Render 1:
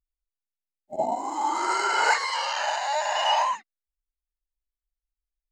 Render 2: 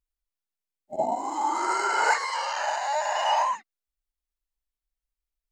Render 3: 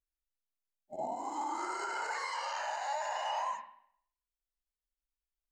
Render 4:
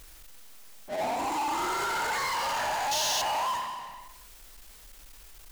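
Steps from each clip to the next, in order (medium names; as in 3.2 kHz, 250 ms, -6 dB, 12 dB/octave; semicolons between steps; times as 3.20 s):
dynamic bell 3.4 kHz, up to -7 dB, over -41 dBFS, Q 1.3
peak limiter -20 dBFS, peak gain reduction 10 dB; reverberation, pre-delay 33 ms, DRR 6.5 dB; trim -8.5 dB
painted sound noise, 2.91–3.22 s, 2.6–6.9 kHz -33 dBFS; power-law waveshaper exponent 0.35; trim -3 dB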